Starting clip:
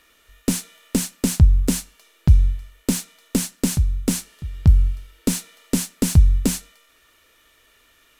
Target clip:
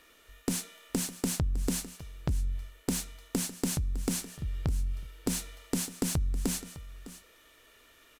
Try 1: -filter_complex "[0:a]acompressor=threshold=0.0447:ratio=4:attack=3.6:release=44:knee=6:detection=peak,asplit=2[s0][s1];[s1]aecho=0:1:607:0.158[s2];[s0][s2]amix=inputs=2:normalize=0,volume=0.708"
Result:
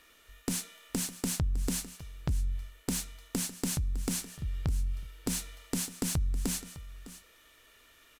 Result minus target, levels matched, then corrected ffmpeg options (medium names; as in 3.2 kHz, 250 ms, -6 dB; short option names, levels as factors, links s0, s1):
500 Hz band -3.0 dB
-filter_complex "[0:a]acompressor=threshold=0.0447:ratio=4:attack=3.6:release=44:knee=6:detection=peak,equalizer=f=420:t=o:w=2.1:g=4,asplit=2[s0][s1];[s1]aecho=0:1:607:0.158[s2];[s0][s2]amix=inputs=2:normalize=0,volume=0.708"